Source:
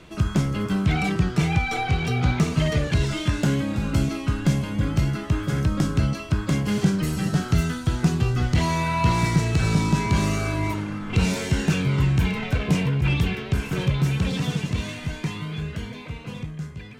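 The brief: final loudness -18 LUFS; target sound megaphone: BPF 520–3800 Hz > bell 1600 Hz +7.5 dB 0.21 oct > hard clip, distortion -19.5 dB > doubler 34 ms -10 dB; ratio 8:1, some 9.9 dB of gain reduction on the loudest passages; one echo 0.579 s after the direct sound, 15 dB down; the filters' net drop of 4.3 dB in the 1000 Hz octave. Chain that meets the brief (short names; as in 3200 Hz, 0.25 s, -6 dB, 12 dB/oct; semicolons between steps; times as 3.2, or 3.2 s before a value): bell 1000 Hz -5 dB; compressor 8:1, threshold -26 dBFS; BPF 520–3800 Hz; bell 1600 Hz +7.5 dB 0.21 oct; echo 0.579 s -15 dB; hard clip -30 dBFS; doubler 34 ms -10 dB; gain +20.5 dB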